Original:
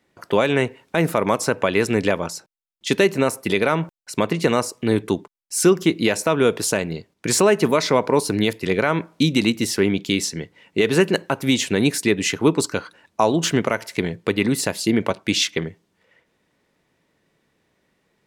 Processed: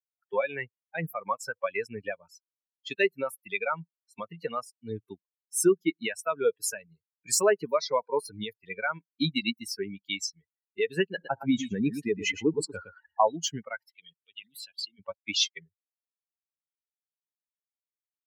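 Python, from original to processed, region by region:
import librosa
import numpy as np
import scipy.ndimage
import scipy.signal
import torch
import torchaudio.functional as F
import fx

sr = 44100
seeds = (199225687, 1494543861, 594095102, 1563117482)

y = fx.chain(x, sr, fx.high_shelf(hz=2100.0, db=-10.5),
    fx.echo_single(ms=114, db=-7.0),
    fx.env_flatten(amount_pct=50), at=(11.13, 13.28))
y = fx.chain(y, sr, fx.highpass(hz=97.0, slope=12),
    fx.level_steps(step_db=15),
    fx.peak_eq(hz=3200.0, db=15.0, octaves=0.7), at=(13.9, 14.99))
y = fx.bin_expand(y, sr, power=3.0)
y = scipy.signal.sosfilt(scipy.signal.butter(2, 84.0, 'highpass', fs=sr, output='sos'), y)
y = fx.low_shelf(y, sr, hz=210.0, db=-12.0)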